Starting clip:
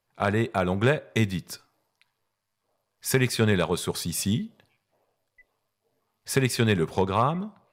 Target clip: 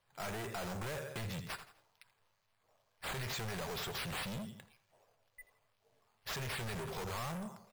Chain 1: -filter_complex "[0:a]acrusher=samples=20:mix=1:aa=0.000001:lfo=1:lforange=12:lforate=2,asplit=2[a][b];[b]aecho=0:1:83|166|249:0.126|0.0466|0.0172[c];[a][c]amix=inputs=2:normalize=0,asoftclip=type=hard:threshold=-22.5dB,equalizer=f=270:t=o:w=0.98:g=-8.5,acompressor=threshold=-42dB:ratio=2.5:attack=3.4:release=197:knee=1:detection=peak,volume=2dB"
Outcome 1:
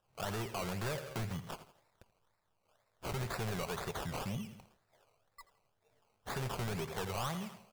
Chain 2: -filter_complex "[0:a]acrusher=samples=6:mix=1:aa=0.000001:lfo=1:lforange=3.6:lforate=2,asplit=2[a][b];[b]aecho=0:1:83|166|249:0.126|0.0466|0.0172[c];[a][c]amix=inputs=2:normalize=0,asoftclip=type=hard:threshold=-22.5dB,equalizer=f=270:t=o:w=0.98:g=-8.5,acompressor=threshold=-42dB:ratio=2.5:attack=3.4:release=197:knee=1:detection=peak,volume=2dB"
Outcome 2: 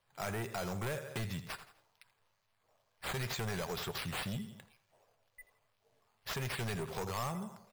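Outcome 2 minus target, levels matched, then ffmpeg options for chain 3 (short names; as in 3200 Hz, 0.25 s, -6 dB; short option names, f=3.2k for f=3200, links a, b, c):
hard clip: distortion -6 dB
-filter_complex "[0:a]acrusher=samples=6:mix=1:aa=0.000001:lfo=1:lforange=3.6:lforate=2,asplit=2[a][b];[b]aecho=0:1:83|166|249:0.126|0.0466|0.0172[c];[a][c]amix=inputs=2:normalize=0,asoftclip=type=hard:threshold=-34dB,equalizer=f=270:t=o:w=0.98:g=-8.5,acompressor=threshold=-42dB:ratio=2.5:attack=3.4:release=197:knee=1:detection=peak,volume=2dB"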